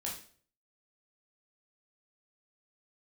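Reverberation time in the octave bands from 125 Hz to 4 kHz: 0.65, 0.50, 0.50, 0.45, 0.45, 0.40 seconds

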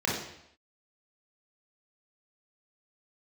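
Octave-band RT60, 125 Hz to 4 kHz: 0.75, 0.75, 0.75, 0.75, 0.75, 0.75 seconds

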